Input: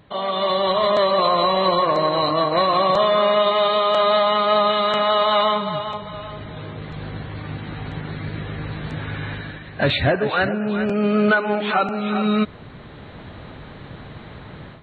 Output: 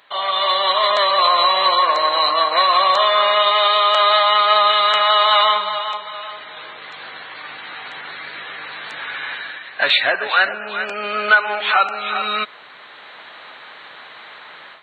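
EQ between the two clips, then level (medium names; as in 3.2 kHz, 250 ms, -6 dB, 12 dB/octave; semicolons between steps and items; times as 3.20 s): high-pass 1.1 kHz 12 dB/octave; +8.0 dB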